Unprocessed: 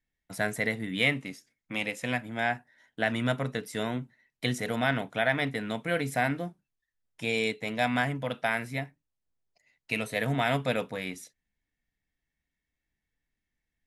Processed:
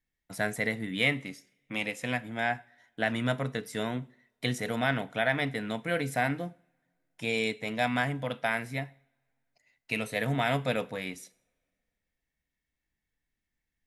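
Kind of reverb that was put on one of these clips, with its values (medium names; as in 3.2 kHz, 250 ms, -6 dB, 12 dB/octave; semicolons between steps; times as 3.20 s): two-slope reverb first 0.54 s, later 2.4 s, from -26 dB, DRR 18.5 dB; trim -1 dB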